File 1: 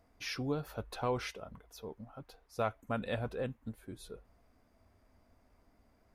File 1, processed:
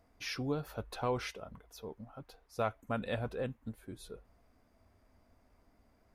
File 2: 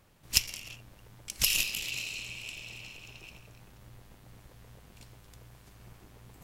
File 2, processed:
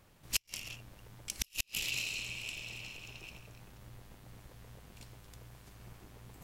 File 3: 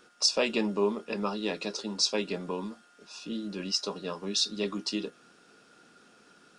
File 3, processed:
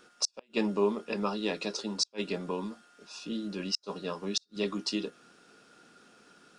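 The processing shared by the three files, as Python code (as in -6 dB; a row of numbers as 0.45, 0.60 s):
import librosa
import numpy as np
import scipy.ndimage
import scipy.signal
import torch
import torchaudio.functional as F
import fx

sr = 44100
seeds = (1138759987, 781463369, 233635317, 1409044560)

y = fx.gate_flip(x, sr, shuts_db=-15.0, range_db=-40)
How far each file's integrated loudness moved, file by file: 0.0, -7.5, -2.5 LU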